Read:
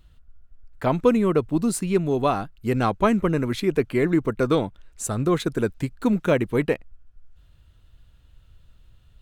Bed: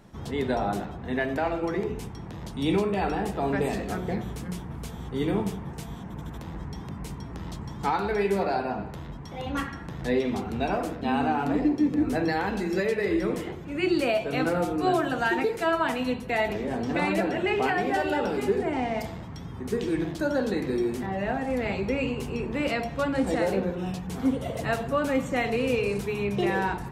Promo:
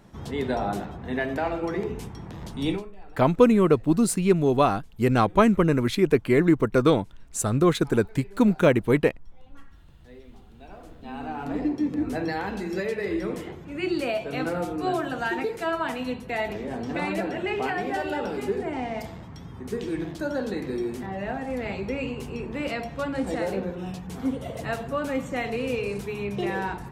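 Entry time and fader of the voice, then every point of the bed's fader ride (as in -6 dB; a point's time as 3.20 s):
2.35 s, +1.5 dB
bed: 2.69 s 0 dB
2.94 s -23.5 dB
10.47 s -23.5 dB
11.62 s -2.5 dB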